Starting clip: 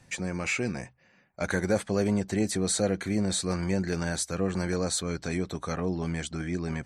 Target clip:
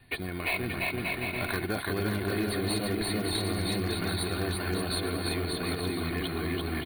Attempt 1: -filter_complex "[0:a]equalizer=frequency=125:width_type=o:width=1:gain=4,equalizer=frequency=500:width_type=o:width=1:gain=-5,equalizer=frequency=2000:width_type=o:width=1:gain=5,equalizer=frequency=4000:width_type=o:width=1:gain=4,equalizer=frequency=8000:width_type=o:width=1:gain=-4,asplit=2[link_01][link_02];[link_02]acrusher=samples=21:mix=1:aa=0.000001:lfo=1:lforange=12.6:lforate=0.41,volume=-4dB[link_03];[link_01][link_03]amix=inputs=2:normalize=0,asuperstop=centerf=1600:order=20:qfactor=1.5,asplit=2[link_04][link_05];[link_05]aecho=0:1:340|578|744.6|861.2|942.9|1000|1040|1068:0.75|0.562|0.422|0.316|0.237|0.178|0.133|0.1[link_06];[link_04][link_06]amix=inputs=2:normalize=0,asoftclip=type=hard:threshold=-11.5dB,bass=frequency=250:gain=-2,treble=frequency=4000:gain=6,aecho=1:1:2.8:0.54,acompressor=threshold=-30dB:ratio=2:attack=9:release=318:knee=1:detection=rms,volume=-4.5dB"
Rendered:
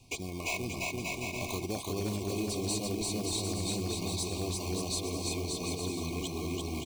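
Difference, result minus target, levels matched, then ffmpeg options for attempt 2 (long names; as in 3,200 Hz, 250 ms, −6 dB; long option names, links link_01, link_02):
8,000 Hz band +7.5 dB; downward compressor: peak gain reduction +4 dB
-filter_complex "[0:a]equalizer=frequency=125:width_type=o:width=1:gain=4,equalizer=frequency=500:width_type=o:width=1:gain=-5,equalizer=frequency=2000:width_type=o:width=1:gain=5,equalizer=frequency=4000:width_type=o:width=1:gain=4,equalizer=frequency=8000:width_type=o:width=1:gain=-4,asplit=2[link_01][link_02];[link_02]acrusher=samples=21:mix=1:aa=0.000001:lfo=1:lforange=12.6:lforate=0.41,volume=-4dB[link_03];[link_01][link_03]amix=inputs=2:normalize=0,asuperstop=centerf=6400:order=20:qfactor=1.5,asplit=2[link_04][link_05];[link_05]aecho=0:1:340|578|744.6|861.2|942.9|1000|1040|1068:0.75|0.562|0.422|0.316|0.237|0.178|0.133|0.1[link_06];[link_04][link_06]amix=inputs=2:normalize=0,asoftclip=type=hard:threshold=-11.5dB,bass=frequency=250:gain=-2,treble=frequency=4000:gain=6,aecho=1:1:2.8:0.54,acompressor=threshold=-22.5dB:ratio=2:attack=9:release=318:knee=1:detection=rms,volume=-4.5dB"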